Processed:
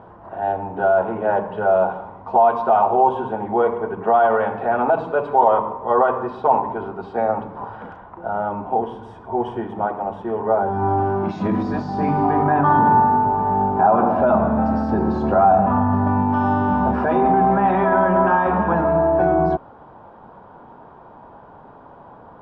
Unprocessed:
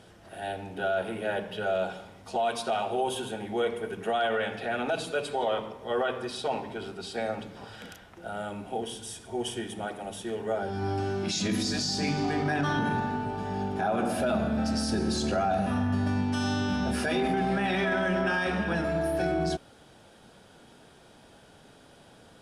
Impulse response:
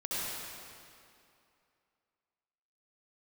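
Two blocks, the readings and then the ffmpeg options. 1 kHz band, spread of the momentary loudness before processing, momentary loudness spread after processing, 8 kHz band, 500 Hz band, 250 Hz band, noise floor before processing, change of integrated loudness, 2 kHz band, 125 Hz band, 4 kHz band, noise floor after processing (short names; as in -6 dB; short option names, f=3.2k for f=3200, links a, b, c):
+15.5 dB, 10 LU, 10 LU, under -25 dB, +11.0 dB, +8.0 dB, -55 dBFS, +11.0 dB, +3.5 dB, +7.5 dB, under -10 dB, -44 dBFS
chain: -af "lowpass=f=1k:t=q:w=4.9,volume=7.5dB"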